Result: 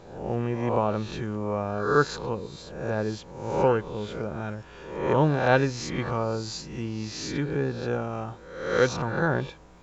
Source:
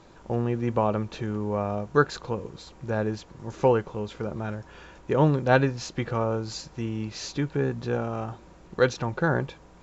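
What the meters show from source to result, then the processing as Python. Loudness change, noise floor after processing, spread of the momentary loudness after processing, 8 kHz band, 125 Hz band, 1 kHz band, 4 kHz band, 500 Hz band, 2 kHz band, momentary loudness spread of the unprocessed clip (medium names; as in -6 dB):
0.0 dB, -47 dBFS, 12 LU, no reading, -1.0 dB, +1.0 dB, +1.5 dB, 0.0 dB, +1.0 dB, 15 LU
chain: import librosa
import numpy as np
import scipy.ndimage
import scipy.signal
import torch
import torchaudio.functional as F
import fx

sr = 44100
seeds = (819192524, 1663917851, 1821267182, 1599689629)

y = fx.spec_swells(x, sr, rise_s=0.76)
y = y * 10.0 ** (-2.0 / 20.0)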